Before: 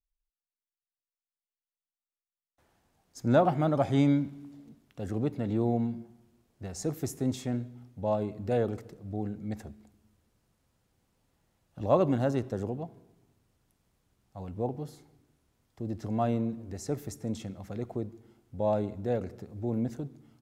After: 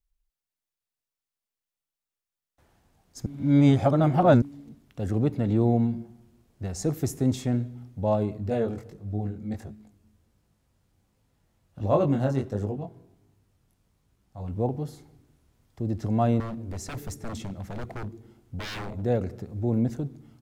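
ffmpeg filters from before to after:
-filter_complex "[0:a]asettb=1/sr,asplit=3[s0][s1][s2];[s0]atrim=end=8.374[s3];[s1]atrim=start=8.37:end=14.5,asetpts=PTS-STARTPTS,afade=t=in:d=0.004:c=qsin,afade=t=out:st=6.126:d=0.004:c=qsin,flanger=delay=19:depth=4:speed=1.4[s4];[s2]atrim=start=14.496[s5];[s3][s4]acrossfade=d=0.004:c1=hsin:c2=qsin[s6];[s6][s5]acrossfade=d=0.004:c1=qsin:c2=hsin,asettb=1/sr,asplit=3[s7][s8][s9];[s7]atrim=end=16.404[s10];[s8]atrim=start=16.4:end=19.02,asetpts=PTS-STARTPTS,afade=t=in:d=0.004:c=qsin,afade=t=out:st=2.616:d=0.004:c=qsin,aeval=exprs='0.0178*(abs(mod(val(0)/0.0178+3,4)-2)-1)':c=same[s11];[s9]atrim=start=19.016[s12];[s10][s11]acrossfade=d=0.004:c1=hsin:c2=qsin[s13];[s13][s12]acrossfade=d=0.004:c1=qsin:c2=hsin,asplit=3[s14][s15][s16];[s14]atrim=end=3.262[s17];[s15]atrim=start=3.258:end=4.422,asetpts=PTS-STARTPTS,areverse[s18];[s16]atrim=start=4.418[s19];[s17][s18]acrossfade=d=0.004:c1=hsin:c2=hsin[s20];[s20][s19]acrossfade=d=0.004:c1=hsin:c2=hsin,lowshelf=f=140:g=7.5,volume=1.5"

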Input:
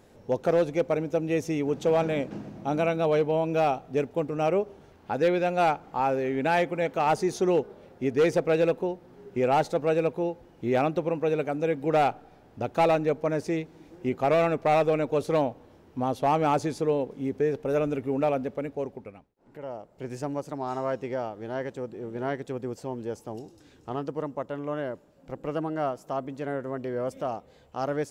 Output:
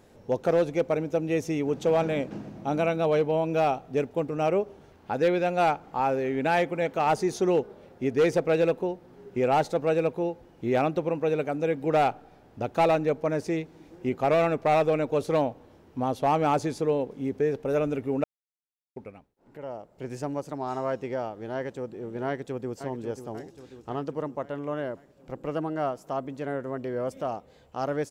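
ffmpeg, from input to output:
-filter_complex "[0:a]asplit=2[s0][s1];[s1]afade=t=in:st=22.26:d=0.01,afade=t=out:st=22.74:d=0.01,aecho=0:1:540|1080|1620|2160|2700|3240|3780:0.316228|0.189737|0.113842|0.0683052|0.0409831|0.0245899|0.0147539[s2];[s0][s2]amix=inputs=2:normalize=0,asplit=3[s3][s4][s5];[s3]atrim=end=18.24,asetpts=PTS-STARTPTS,afade=t=out:st=18.236:d=0.004:c=hsin[s6];[s4]atrim=start=18.24:end=18.96,asetpts=PTS-STARTPTS,volume=0[s7];[s5]atrim=start=18.96,asetpts=PTS-STARTPTS,afade=t=in:d=0.004:c=hsin[s8];[s6][s7][s8]concat=n=3:v=0:a=1"

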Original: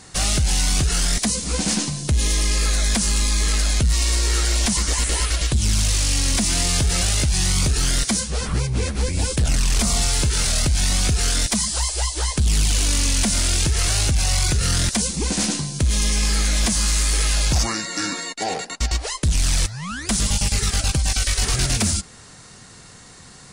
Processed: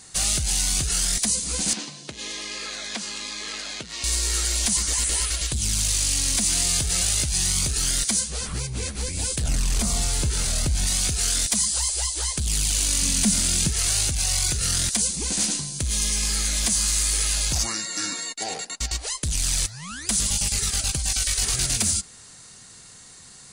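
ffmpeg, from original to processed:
-filter_complex "[0:a]asettb=1/sr,asplit=3[s0][s1][s2];[s0]atrim=end=1.734[s3];[s1]atrim=start=1.73:end=4.04,asetpts=PTS-STARTPTS,afade=t=in:d=0.004:c=qsin,afade=t=out:st=2.306:d=0.004:c=qsin,highpass=270,lowpass=3800[s4];[s2]atrim=start=4.036[s5];[s3][s4]acrossfade=d=0.004:c1=hsin:c2=qsin[s6];[s6][s5]acrossfade=d=0.004:c1=qsin:c2=hsin,asettb=1/sr,asplit=3[s7][s8][s9];[s7]atrim=end=9.444[s10];[s8]atrim=start=9.44:end=10.87,asetpts=PTS-STARTPTS,afade=t=in:d=0.004:c=qsin,afade=t=out:st=1.426:d=0.004:c=qsin,tiltshelf=f=1400:g=4.5[s11];[s9]atrim=start=10.866[s12];[s10][s11]acrossfade=d=0.004:c1=hsin:c2=qsin[s13];[s13][s12]acrossfade=d=0.004:c1=qsin:c2=hsin,asettb=1/sr,asplit=3[s14][s15][s16];[s14]atrim=end=13.024[s17];[s15]atrim=start=13.02:end=13.72,asetpts=PTS-STARTPTS,afade=t=in:d=0.004:c=qsin,afade=t=out:st=0.696:d=0.004:c=qsin,equalizer=f=190:w=1.6:g=12[s18];[s16]atrim=start=13.716[s19];[s17][s18]acrossfade=d=0.004:c1=hsin:c2=qsin[s20];[s20][s19]acrossfade=d=0.004:c1=qsin:c2=hsin,highshelf=f=3300:g=11.5,bandreject=f=5400:w=19,volume=0.376"

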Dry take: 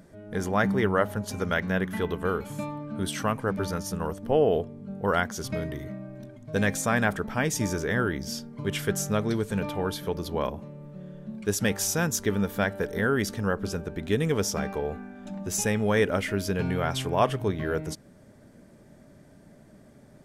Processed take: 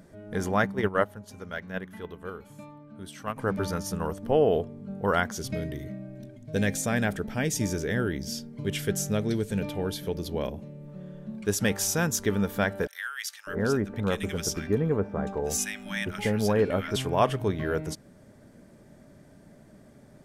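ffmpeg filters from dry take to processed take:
-filter_complex "[0:a]asplit=3[s0][s1][s2];[s0]afade=t=out:st=0.63:d=0.02[s3];[s1]agate=range=0.251:threshold=0.0631:ratio=16:release=100:detection=peak,afade=t=in:st=0.63:d=0.02,afade=t=out:st=3.36:d=0.02[s4];[s2]afade=t=in:st=3.36:d=0.02[s5];[s3][s4][s5]amix=inputs=3:normalize=0,asettb=1/sr,asplit=3[s6][s7][s8];[s6]atrim=end=5.384[s9];[s7]atrim=start=5.38:end=10.88,asetpts=PTS-STARTPTS,afade=t=in:d=0.004:c=qsin,afade=t=out:st=5.496:d=0.004:c=qsin,equalizer=f=1100:w=1.5:g=-10.5[s10];[s8]atrim=start=10.876[s11];[s9][s10]acrossfade=d=0.004:c1=hsin:c2=qsin[s12];[s12][s11]acrossfade=d=0.004:c1=qsin:c2=hsin,asettb=1/sr,asplit=3[s13][s14][s15];[s13]atrim=end=12.874[s16];[s14]atrim=start=12.87:end=16.96,asetpts=PTS-STARTPTS,afade=t=in:d=0.004:c=qsin,afade=t=out:st=4.086:d=0.004:c=qsin,acrossover=split=1500[s17][s18];[s17]adelay=600[s19];[s19][s18]amix=inputs=2:normalize=0,atrim=end_sample=180369[s20];[s15]atrim=start=16.956[s21];[s16][s20]acrossfade=d=0.004:c1=hsin:c2=qsin[s22];[s22][s21]acrossfade=d=0.004:c1=qsin:c2=hsin"

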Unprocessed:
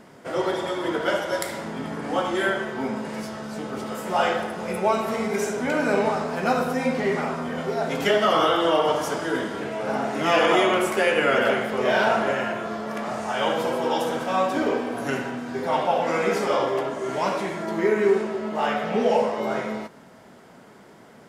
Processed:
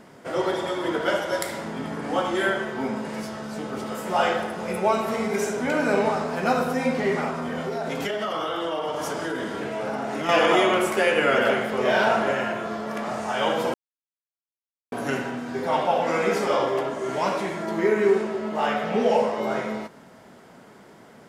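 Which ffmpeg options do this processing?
-filter_complex "[0:a]asettb=1/sr,asplit=3[s0][s1][s2];[s0]atrim=end=7.294[s3];[s1]atrim=start=7.29:end=10.29,asetpts=PTS-STARTPTS,afade=t=in:d=0.004:c=qsin,afade=t=out:st=2.996:d=0.004:c=qsin,acompressor=threshold=0.0631:ratio=6:attack=3.2:release=140:knee=1:detection=peak[s4];[s2]atrim=start=10.286[s5];[s3][s4]acrossfade=d=0.004:c1=hsin:c2=qsin[s6];[s6][s5]acrossfade=d=0.004:c1=qsin:c2=hsin,asplit=3[s7][s8][s9];[s7]atrim=end=13.74,asetpts=PTS-STARTPTS,afade=t=out:st=13.736:d=0.004:c=hsin[s10];[s8]atrim=start=13.74:end=14.92,asetpts=PTS-STARTPTS,volume=0[s11];[s9]atrim=start=14.92,asetpts=PTS-STARTPTS,afade=t=in:d=0.004:c=hsin[s12];[s10][s11][s12]concat=n=3:v=0:a=1"

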